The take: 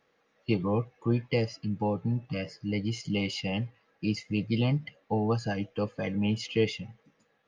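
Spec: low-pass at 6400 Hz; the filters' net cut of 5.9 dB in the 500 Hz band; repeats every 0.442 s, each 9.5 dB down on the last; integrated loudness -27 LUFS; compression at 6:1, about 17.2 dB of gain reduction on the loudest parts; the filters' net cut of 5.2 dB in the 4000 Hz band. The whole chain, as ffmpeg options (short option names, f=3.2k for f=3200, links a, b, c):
-af "lowpass=6.4k,equalizer=f=500:t=o:g=-7,equalizer=f=4k:t=o:g=-7.5,acompressor=threshold=-43dB:ratio=6,aecho=1:1:442|884|1326|1768:0.335|0.111|0.0365|0.012,volume=19.5dB"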